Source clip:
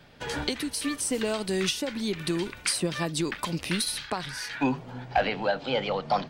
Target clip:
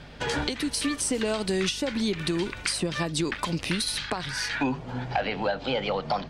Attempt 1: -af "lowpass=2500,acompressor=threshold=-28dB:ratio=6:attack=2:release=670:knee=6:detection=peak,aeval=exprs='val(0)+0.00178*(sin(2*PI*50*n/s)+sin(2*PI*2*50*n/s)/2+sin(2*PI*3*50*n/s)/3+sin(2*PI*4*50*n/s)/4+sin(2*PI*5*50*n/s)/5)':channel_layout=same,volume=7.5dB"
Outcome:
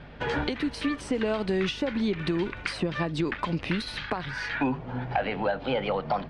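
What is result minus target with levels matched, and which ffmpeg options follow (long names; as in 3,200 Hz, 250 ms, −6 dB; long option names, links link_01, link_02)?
8,000 Hz band −15.5 dB
-af "lowpass=9100,acompressor=threshold=-28dB:ratio=6:attack=2:release=670:knee=6:detection=peak,aeval=exprs='val(0)+0.00178*(sin(2*PI*50*n/s)+sin(2*PI*2*50*n/s)/2+sin(2*PI*3*50*n/s)/3+sin(2*PI*4*50*n/s)/4+sin(2*PI*5*50*n/s)/5)':channel_layout=same,volume=7.5dB"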